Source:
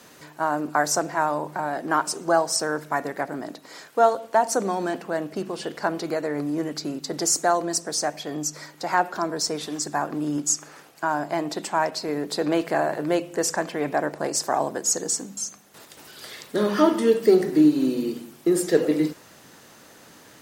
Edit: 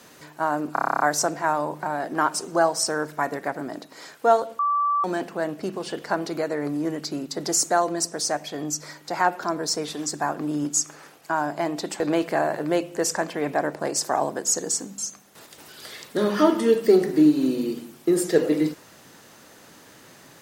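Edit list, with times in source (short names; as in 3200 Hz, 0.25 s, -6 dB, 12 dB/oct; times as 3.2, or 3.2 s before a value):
0.73 stutter 0.03 s, 10 plays
4.32–4.77 bleep 1160 Hz -19 dBFS
11.73–12.39 cut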